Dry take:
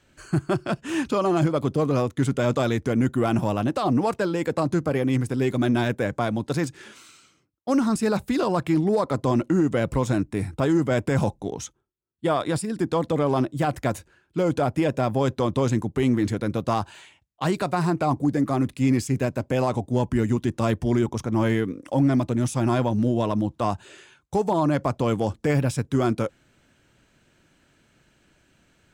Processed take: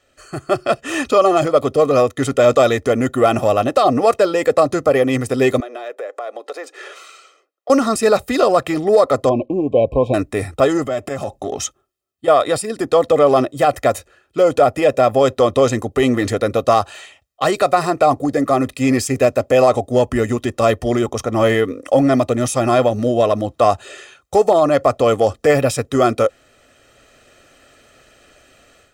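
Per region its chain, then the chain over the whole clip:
0:05.60–0:07.70: Butterworth high-pass 370 Hz + high-shelf EQ 3,400 Hz −11 dB + downward compressor 4 to 1, threshold −42 dBFS
0:09.29–0:10.14: linear-phase brick-wall band-stop 1,100–2,200 Hz + high-frequency loss of the air 490 metres
0:10.84–0:12.28: downward compressor, threshold −26 dBFS + notch comb filter 480 Hz
whole clip: low shelf with overshoot 230 Hz −8 dB, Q 3; comb filter 1.6 ms, depth 77%; automatic gain control

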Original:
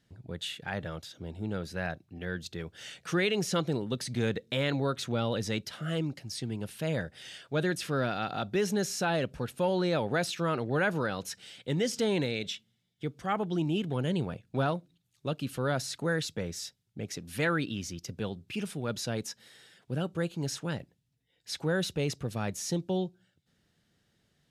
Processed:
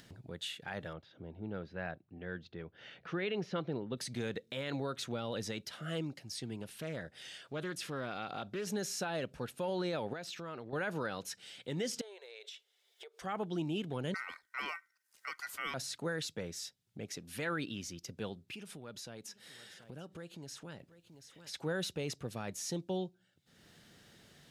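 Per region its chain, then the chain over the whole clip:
0:00.93–0:03.97: high-frequency loss of the air 280 metres + one half of a high-frequency compander decoder only
0:06.62–0:08.67: downward compressor 2.5 to 1, threshold −32 dBFS + highs frequency-modulated by the lows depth 0.17 ms
0:10.13–0:10.73: parametric band 10,000 Hz −8.5 dB 0.48 octaves + downward compressor 5 to 1, threshold −36 dBFS
0:12.01–0:13.22: downward compressor 12 to 1, threshold −41 dBFS + linear-phase brick-wall high-pass 360 Hz
0:14.14–0:15.74: high-pass filter 210 Hz + high-shelf EQ 6,800 Hz +9.5 dB + ring modulation 1,700 Hz
0:18.54–0:21.54: downward compressor 3 to 1, threshold −41 dBFS + single-tap delay 732 ms −20.5 dB
whole clip: low-shelf EQ 160 Hz −7.5 dB; upward compression, threshold −41 dBFS; brickwall limiter −23 dBFS; level −4 dB

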